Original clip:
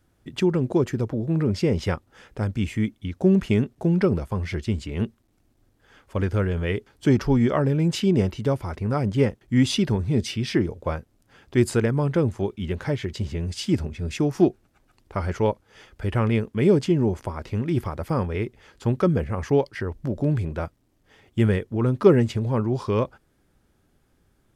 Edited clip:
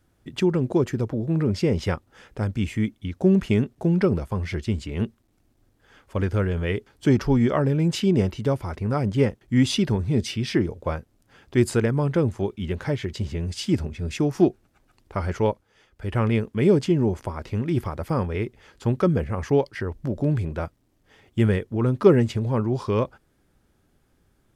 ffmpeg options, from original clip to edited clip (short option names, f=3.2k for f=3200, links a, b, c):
-filter_complex "[0:a]asplit=3[a][b][c];[a]atrim=end=15.75,asetpts=PTS-STARTPTS,afade=t=out:st=15.47:d=0.28:silence=0.316228[d];[b]atrim=start=15.75:end=15.92,asetpts=PTS-STARTPTS,volume=-10dB[e];[c]atrim=start=15.92,asetpts=PTS-STARTPTS,afade=t=in:d=0.28:silence=0.316228[f];[d][e][f]concat=n=3:v=0:a=1"